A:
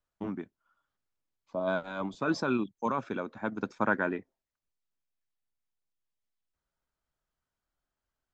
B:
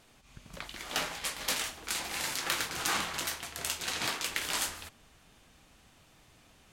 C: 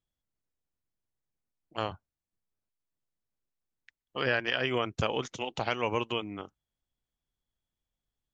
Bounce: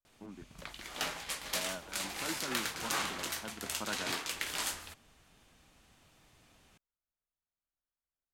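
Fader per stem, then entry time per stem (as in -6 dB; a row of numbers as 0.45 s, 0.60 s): -13.0 dB, -3.5 dB, mute; 0.00 s, 0.05 s, mute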